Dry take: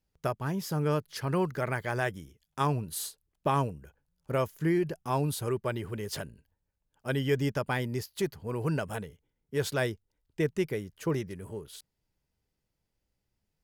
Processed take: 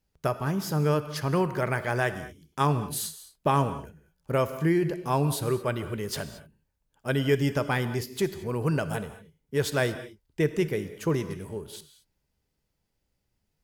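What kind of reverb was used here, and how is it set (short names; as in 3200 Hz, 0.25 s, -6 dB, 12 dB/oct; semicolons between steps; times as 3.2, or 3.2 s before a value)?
non-linear reverb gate 0.25 s flat, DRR 11 dB; gain +3.5 dB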